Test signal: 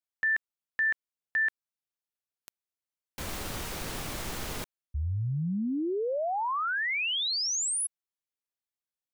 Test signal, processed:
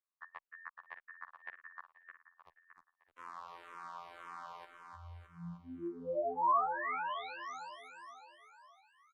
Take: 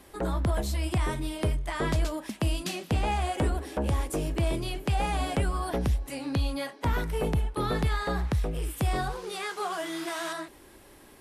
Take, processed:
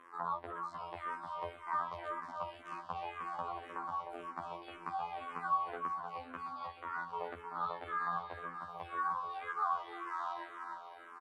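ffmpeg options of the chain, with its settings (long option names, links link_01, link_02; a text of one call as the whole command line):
ffmpeg -i in.wav -filter_complex "[0:a]aderivative,areverse,acompressor=threshold=-47dB:ratio=8:attack=12:release=348:knee=6:detection=rms,areverse,afftfilt=real='hypot(re,im)*cos(PI*b)':imag='0':win_size=2048:overlap=0.75,acontrast=23,lowpass=frequency=1100:width_type=q:width=5.5,alimiter=level_in=13.5dB:limit=-24dB:level=0:latency=1:release=431,volume=-13.5dB,aecho=1:1:307|614|921|1228|1535|1842|2149|2456:0.501|0.301|0.18|0.108|0.065|0.039|0.0234|0.014,asplit=2[link_01][link_02];[link_02]afreqshift=-1.9[link_03];[link_01][link_03]amix=inputs=2:normalize=1,volume=14.5dB" out.wav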